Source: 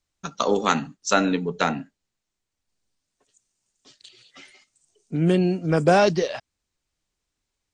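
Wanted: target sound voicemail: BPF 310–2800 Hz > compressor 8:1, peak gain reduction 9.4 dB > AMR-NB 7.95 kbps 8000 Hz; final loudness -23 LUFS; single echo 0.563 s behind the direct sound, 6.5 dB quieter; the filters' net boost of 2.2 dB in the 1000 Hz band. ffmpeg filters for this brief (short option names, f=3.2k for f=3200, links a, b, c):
-af "highpass=310,lowpass=2.8k,equalizer=f=1k:t=o:g=3.5,aecho=1:1:563:0.473,acompressor=threshold=-21dB:ratio=8,volume=6dB" -ar 8000 -c:a libopencore_amrnb -b:a 7950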